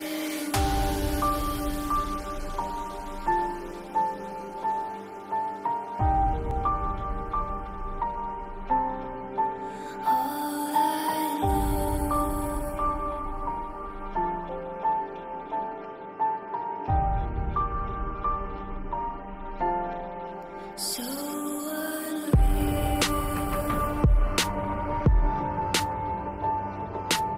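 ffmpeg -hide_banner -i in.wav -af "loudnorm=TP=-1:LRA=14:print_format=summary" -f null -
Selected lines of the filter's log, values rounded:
Input Integrated:    -28.9 LUFS
Input True Peak:     -11.0 dBTP
Input LRA:             5.1 LU
Input Threshold:     -38.9 LUFS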